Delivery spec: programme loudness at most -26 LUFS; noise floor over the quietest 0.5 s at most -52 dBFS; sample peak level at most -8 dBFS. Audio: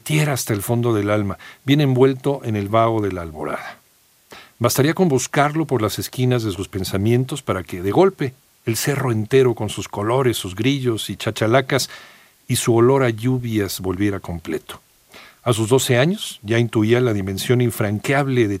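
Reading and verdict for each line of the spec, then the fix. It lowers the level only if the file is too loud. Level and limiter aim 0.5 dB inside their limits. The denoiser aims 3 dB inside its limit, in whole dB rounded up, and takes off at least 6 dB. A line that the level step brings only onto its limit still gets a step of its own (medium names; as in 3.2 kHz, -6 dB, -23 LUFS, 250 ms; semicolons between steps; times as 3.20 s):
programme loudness -19.5 LUFS: fail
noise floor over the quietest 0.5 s -57 dBFS: pass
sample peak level -2.5 dBFS: fail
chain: trim -7 dB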